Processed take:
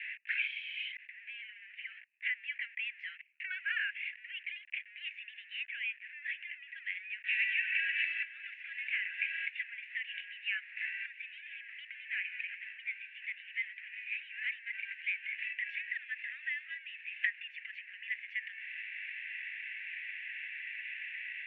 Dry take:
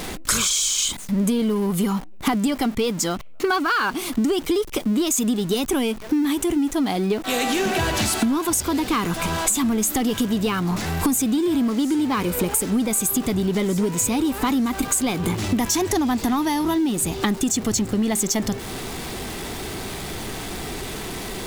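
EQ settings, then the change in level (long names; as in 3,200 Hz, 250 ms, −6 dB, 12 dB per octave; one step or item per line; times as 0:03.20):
Butterworth high-pass 1,700 Hz 96 dB per octave
Chebyshev low-pass filter 2,700 Hz, order 6
0.0 dB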